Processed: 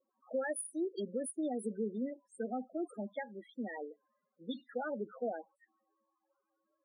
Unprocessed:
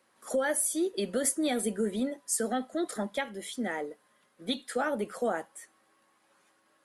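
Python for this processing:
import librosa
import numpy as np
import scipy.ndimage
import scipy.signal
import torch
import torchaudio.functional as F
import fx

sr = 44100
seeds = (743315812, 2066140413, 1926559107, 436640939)

y = fx.spec_topn(x, sr, count=8)
y = fx.env_lowpass(y, sr, base_hz=950.0, full_db=-27.0)
y = y * 10.0 ** (-6.5 / 20.0)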